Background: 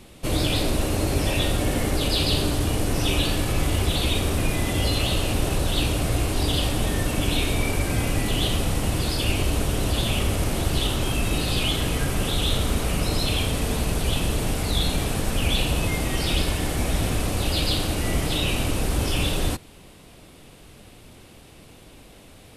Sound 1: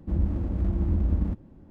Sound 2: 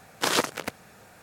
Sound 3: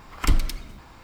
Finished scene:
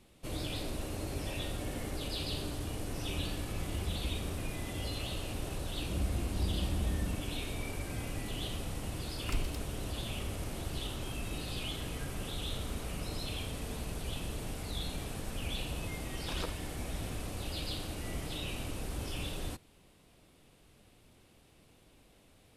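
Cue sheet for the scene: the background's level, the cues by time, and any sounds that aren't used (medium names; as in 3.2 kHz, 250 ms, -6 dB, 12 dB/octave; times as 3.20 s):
background -15 dB
3.00 s: add 1 -17 dB
5.81 s: add 1 -4 dB + compression 1.5:1, threshold -36 dBFS
9.05 s: add 3 -15 dB
16.05 s: add 2 -18 dB + spectral contrast expander 1.5:1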